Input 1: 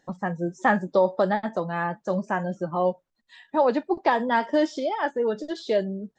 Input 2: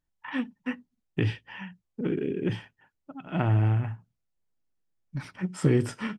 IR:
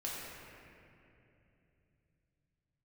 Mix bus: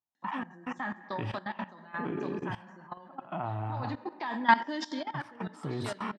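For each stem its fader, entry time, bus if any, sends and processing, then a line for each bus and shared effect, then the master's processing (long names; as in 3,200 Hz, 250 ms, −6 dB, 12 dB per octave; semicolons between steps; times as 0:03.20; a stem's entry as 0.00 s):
−1.5 dB, 0.15 s, send −20 dB, octave-band graphic EQ 125/250/500/1,000/2,000/4,000 Hz −6/+10/−10/+9/+6/+10 dB; automatic ducking −15 dB, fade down 0.30 s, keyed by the second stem
−2.5 dB, 0.00 s, no send, flat-topped bell 910 Hz +13 dB 1.2 octaves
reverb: on, RT60 2.9 s, pre-delay 3 ms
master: high-pass filter 96 Hz 24 dB per octave; output level in coarse steps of 17 dB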